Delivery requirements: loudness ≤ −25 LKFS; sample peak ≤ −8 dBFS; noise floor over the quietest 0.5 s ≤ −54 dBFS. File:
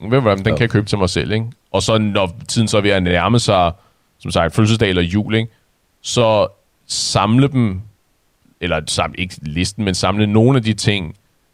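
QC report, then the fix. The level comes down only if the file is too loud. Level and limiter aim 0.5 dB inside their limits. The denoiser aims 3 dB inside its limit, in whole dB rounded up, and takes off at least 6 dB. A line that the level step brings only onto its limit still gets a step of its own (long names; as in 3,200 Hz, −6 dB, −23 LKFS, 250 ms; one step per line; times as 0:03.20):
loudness −16.5 LKFS: out of spec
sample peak −2.5 dBFS: out of spec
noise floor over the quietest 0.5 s −60 dBFS: in spec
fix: level −9 dB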